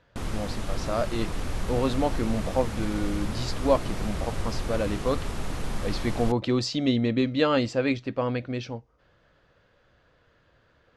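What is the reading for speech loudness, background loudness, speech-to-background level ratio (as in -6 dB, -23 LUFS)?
-28.5 LUFS, -34.0 LUFS, 5.5 dB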